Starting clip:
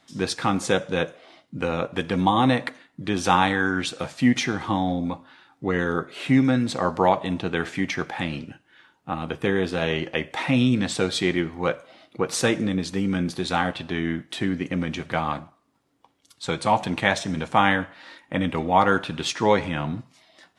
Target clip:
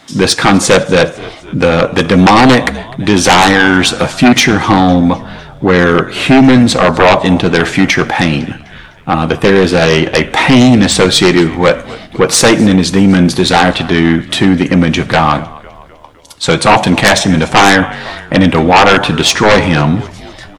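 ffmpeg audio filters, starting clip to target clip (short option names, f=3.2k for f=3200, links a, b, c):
-filter_complex "[0:a]asplit=5[a][b][c][d][e];[b]adelay=253,afreqshift=-57,volume=-23dB[f];[c]adelay=506,afreqshift=-114,volume=-28.2dB[g];[d]adelay=759,afreqshift=-171,volume=-33.4dB[h];[e]adelay=1012,afreqshift=-228,volume=-38.6dB[i];[a][f][g][h][i]amix=inputs=5:normalize=0,aeval=exprs='0.794*sin(PI/2*5.01*val(0)/0.794)':c=same,volume=1dB"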